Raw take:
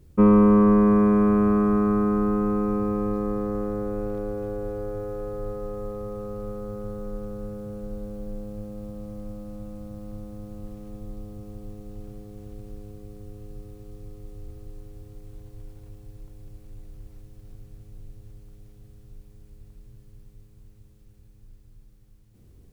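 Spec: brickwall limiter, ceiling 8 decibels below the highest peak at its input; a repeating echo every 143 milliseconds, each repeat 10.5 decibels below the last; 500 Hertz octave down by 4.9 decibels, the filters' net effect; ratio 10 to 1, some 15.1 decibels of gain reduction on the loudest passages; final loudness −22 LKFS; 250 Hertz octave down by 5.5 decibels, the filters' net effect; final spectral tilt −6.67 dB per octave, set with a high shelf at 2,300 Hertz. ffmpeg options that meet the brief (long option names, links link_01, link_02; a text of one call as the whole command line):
ffmpeg -i in.wav -af "equalizer=frequency=250:width_type=o:gain=-6.5,equalizer=frequency=500:width_type=o:gain=-4,highshelf=frequency=2300:gain=5.5,acompressor=threshold=-33dB:ratio=10,alimiter=level_in=7dB:limit=-24dB:level=0:latency=1,volume=-7dB,aecho=1:1:143|286|429:0.299|0.0896|0.0269,volume=21.5dB" out.wav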